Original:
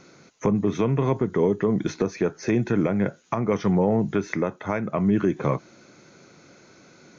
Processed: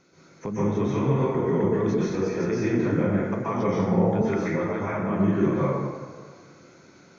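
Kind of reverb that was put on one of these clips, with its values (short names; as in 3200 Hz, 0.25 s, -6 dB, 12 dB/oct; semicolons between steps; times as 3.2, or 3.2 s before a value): plate-style reverb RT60 1.6 s, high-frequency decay 0.5×, pre-delay 0.115 s, DRR -9 dB; gain -10 dB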